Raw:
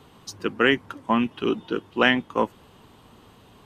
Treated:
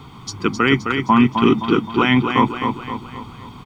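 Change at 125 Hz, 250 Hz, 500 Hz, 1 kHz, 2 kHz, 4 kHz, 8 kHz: +15.5 dB, +9.5 dB, +3.5 dB, +9.0 dB, +2.5 dB, +4.0 dB, n/a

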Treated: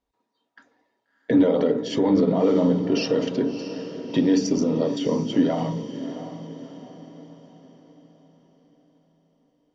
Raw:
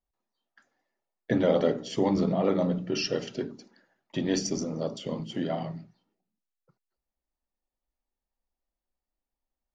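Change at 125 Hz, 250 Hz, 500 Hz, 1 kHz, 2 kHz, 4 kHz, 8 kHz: +4.0, +9.0, +6.0, +3.5, +2.5, +2.5, 0.0 dB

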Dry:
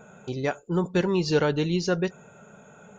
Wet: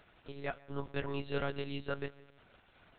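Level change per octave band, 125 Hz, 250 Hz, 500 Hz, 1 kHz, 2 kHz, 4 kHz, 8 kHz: -14.5 dB, -17.0 dB, -14.0 dB, -10.5 dB, -10.0 dB, -13.0 dB, n/a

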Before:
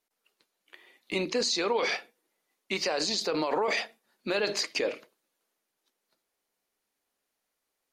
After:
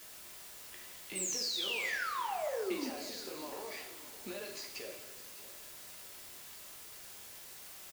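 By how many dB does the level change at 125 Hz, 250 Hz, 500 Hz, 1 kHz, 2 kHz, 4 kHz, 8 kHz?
-12.5, -9.0, -11.5, -6.5, -6.5, -7.5, -2.0 dB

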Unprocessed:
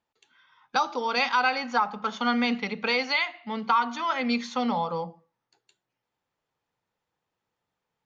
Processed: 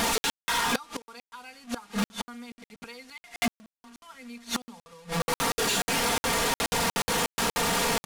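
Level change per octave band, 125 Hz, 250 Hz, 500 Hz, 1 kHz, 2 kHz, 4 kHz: +7.0, -3.0, +0.5, -3.5, -1.5, +4.0 dB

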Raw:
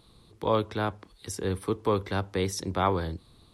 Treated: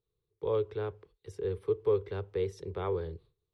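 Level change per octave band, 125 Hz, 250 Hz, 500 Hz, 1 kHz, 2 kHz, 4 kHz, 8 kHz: -7.0 dB, -11.0 dB, -1.0 dB, -13.5 dB, -13.0 dB, under -15 dB, under -20 dB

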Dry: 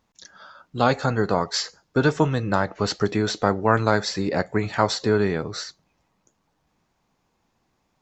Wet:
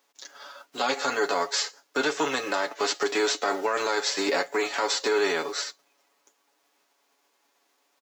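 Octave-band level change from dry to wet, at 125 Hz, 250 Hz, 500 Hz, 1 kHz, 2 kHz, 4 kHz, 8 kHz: under -25 dB, -9.5 dB, -3.5 dB, -3.5 dB, 0.0 dB, +1.0 dB, n/a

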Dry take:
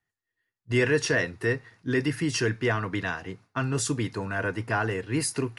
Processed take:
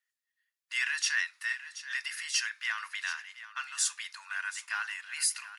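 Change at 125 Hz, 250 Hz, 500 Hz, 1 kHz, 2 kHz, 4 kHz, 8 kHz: under -40 dB, under -40 dB, under -40 dB, -9.0 dB, -2.5 dB, +1.0 dB, +1.5 dB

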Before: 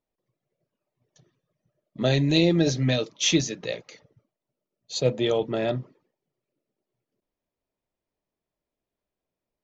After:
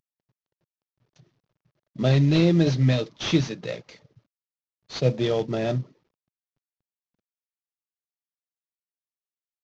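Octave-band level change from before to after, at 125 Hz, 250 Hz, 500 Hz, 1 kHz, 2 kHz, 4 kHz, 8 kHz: +5.0 dB, +1.5 dB, -0.5 dB, 0.0 dB, -2.0 dB, -4.5 dB, n/a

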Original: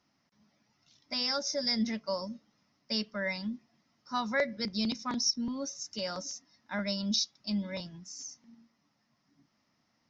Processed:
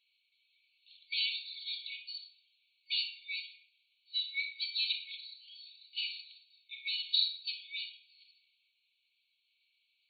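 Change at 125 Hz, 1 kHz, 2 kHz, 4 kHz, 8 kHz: under -40 dB, under -40 dB, -2.5 dB, +1.0 dB, n/a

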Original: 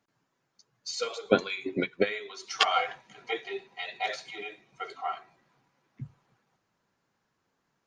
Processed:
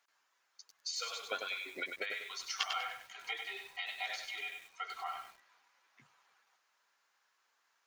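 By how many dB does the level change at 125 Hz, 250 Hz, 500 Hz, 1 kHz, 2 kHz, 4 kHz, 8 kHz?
under -30 dB, -24.0 dB, -18.0 dB, -10.5 dB, -5.5 dB, -6.0 dB, -2.5 dB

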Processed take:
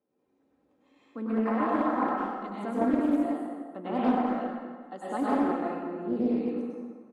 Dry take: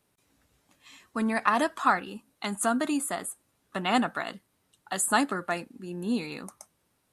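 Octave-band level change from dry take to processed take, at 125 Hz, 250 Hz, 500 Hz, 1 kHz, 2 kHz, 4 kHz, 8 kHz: -2.0 dB, +4.0 dB, +2.5 dB, -2.0 dB, -10.0 dB, under -15 dB, under -25 dB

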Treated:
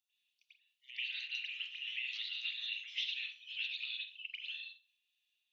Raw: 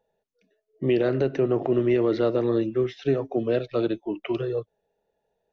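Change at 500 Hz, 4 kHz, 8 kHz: under -40 dB, +6.5 dB, n/a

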